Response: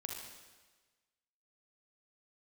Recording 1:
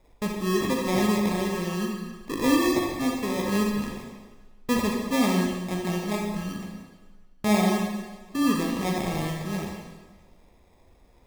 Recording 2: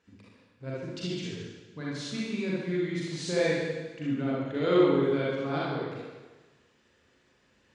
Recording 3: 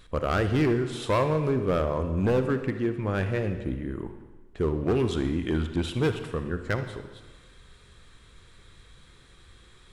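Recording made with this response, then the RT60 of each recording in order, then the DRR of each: 1; 1.3, 1.3, 1.3 s; 0.0, -7.5, 8.0 dB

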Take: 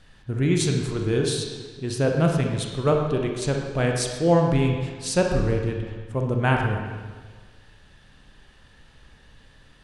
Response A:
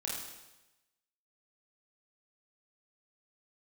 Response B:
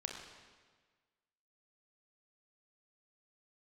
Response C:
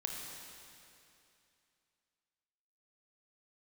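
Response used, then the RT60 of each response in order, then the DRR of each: B; 1.0, 1.5, 2.7 s; -4.0, 1.5, 0.0 dB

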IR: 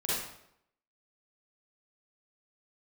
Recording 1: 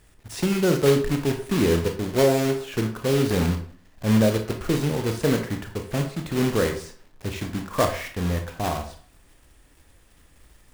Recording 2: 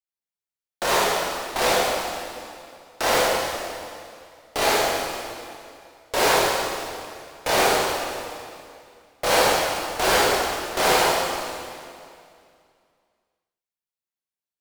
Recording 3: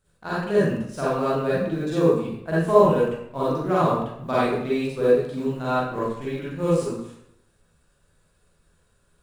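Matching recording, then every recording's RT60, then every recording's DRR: 3; 0.45, 2.4, 0.75 s; 4.5, -7.5, -9.0 dB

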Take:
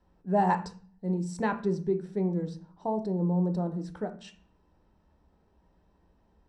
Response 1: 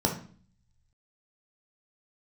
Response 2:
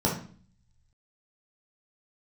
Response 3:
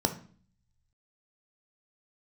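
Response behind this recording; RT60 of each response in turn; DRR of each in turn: 3; 0.45, 0.45, 0.45 s; 1.0, -4.0, 6.5 dB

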